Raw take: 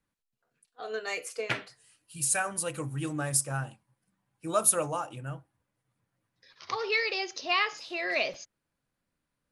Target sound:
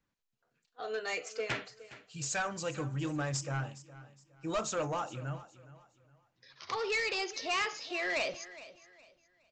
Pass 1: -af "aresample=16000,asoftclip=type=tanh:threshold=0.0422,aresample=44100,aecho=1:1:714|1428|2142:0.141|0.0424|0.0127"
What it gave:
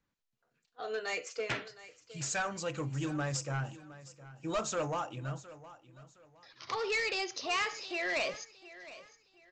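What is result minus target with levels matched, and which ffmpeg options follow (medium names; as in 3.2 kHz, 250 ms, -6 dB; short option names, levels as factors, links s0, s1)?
echo 300 ms late
-af "aresample=16000,asoftclip=type=tanh:threshold=0.0422,aresample=44100,aecho=1:1:414|828|1242:0.141|0.0424|0.0127"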